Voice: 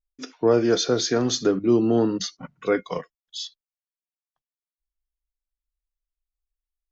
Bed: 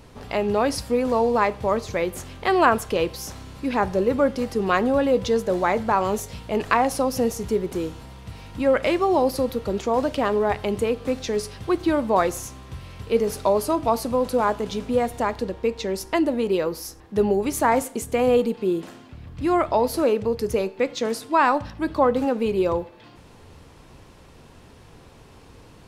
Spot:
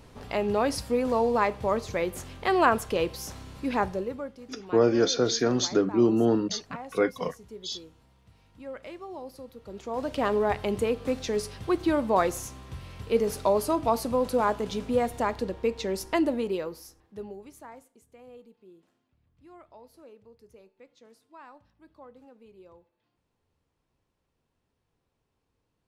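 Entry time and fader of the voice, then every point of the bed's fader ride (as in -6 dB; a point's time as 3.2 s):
4.30 s, -2.5 dB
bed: 3.81 s -4 dB
4.36 s -20.5 dB
9.53 s -20.5 dB
10.24 s -3.5 dB
16.28 s -3.5 dB
17.92 s -30.5 dB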